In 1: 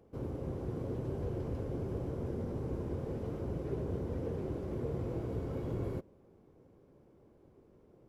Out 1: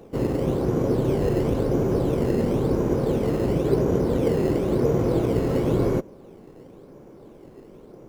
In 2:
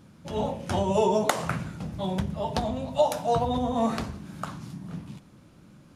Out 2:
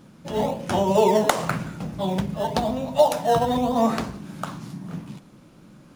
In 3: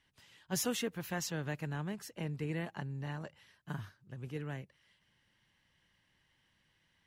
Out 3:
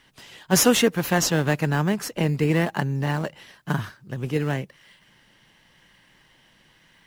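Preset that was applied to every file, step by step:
parametric band 80 Hz −11.5 dB 0.95 octaves
in parallel at −11 dB: sample-and-hold swept by an LFO 13×, swing 100% 0.96 Hz
on the sum: loudness normalisation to −23 LKFS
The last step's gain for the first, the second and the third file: +15.5, +3.5, +16.0 decibels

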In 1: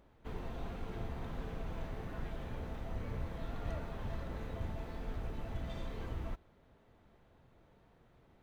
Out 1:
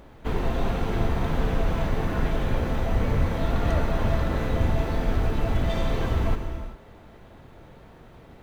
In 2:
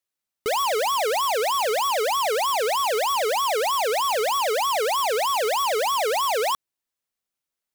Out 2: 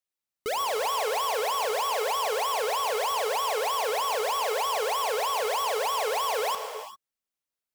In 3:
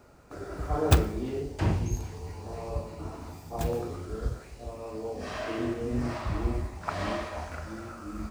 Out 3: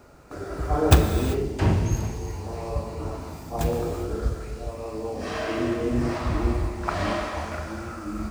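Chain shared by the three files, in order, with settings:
reverb whose tail is shaped and stops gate 420 ms flat, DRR 6 dB
loudness normalisation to −27 LKFS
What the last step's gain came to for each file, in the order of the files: +16.0, −5.5, +5.0 decibels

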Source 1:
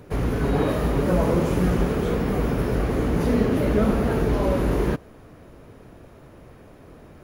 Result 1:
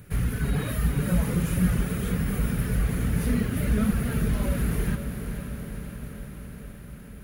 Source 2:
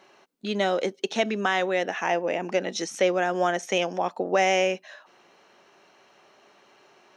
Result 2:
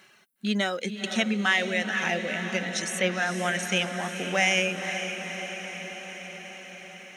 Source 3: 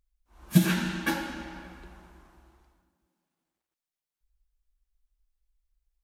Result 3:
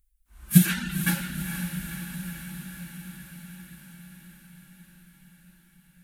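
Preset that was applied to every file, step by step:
reverb reduction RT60 0.82 s
flat-topped bell 550 Hz −12 dB 2.3 octaves
harmonic and percussive parts rebalanced harmonic +5 dB
high shelf with overshoot 7,500 Hz +7.5 dB, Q 1.5
on a send: feedback delay with all-pass diffusion 487 ms, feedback 70%, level −8.5 dB
on the sum: loudness normalisation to −27 LKFS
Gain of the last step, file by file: −3.0, +2.0, +2.0 decibels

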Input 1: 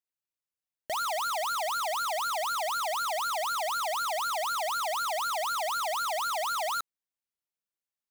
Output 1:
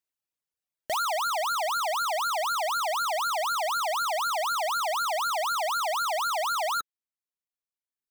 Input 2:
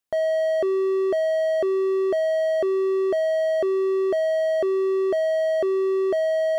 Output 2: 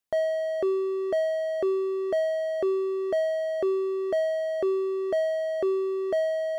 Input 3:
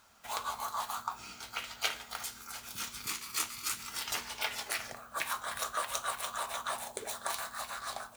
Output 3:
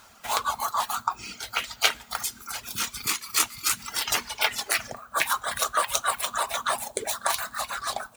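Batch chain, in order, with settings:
reverb reduction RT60 1.4 s
loudness normalisation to −27 LKFS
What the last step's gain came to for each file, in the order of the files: +3.5, −1.5, +11.0 decibels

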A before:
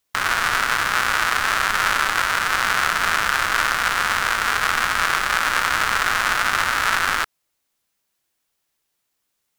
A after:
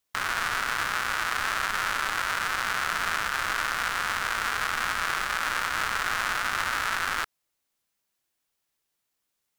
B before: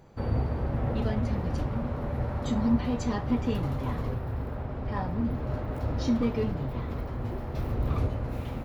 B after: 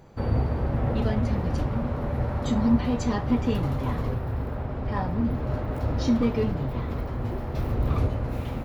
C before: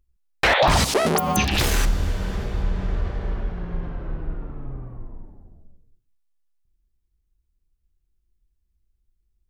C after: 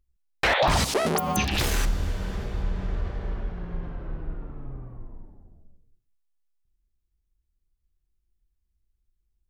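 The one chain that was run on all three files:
brickwall limiter −7.5 dBFS
loudness normalisation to −27 LKFS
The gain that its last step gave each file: −5.5, +3.5, −4.0 decibels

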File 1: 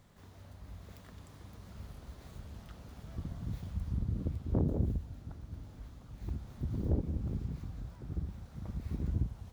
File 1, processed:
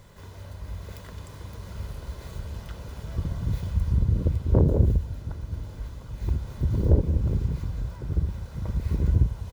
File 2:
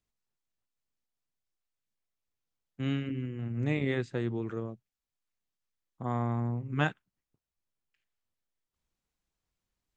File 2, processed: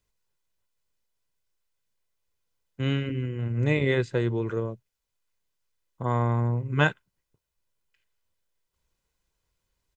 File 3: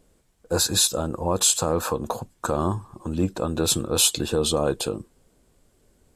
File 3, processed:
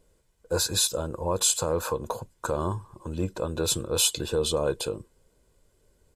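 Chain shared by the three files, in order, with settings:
comb filter 2 ms, depth 42%
loudness normalisation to −27 LKFS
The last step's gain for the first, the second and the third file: +10.5, +6.5, −4.5 decibels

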